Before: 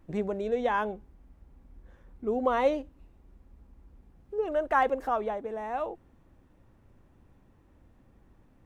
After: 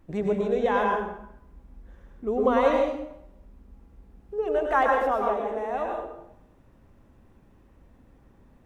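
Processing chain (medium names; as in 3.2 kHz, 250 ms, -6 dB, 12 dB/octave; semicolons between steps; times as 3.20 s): plate-style reverb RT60 0.77 s, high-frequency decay 0.8×, pre-delay 90 ms, DRR 0.5 dB; trim +1.5 dB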